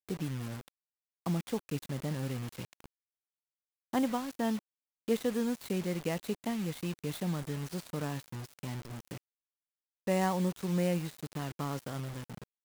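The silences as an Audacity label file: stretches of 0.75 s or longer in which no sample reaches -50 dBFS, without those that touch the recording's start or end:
2.860000	3.930000	silence
9.180000	10.070000	silence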